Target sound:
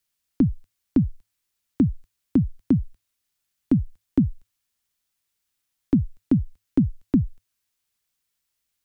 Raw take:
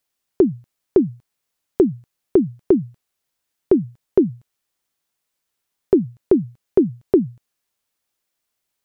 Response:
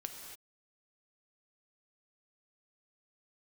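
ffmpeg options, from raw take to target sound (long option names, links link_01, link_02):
-af "equalizer=frequency=690:width_type=o:width=2.1:gain=-8,afreqshift=-110"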